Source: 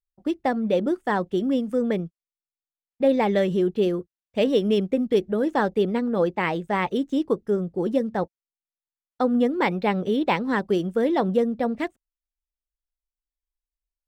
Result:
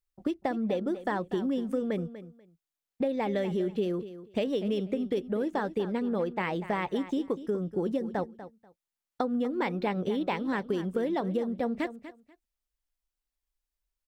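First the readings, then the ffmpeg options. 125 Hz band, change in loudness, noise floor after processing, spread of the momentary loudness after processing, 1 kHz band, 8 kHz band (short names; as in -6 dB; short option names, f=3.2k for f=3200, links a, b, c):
-6.0 dB, -7.0 dB, under -85 dBFS, 6 LU, -7.5 dB, n/a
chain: -filter_complex "[0:a]acompressor=threshold=-31dB:ratio=6,asplit=2[a][b];[b]aecho=0:1:243|486:0.211|0.0402[c];[a][c]amix=inputs=2:normalize=0,volume=3.5dB"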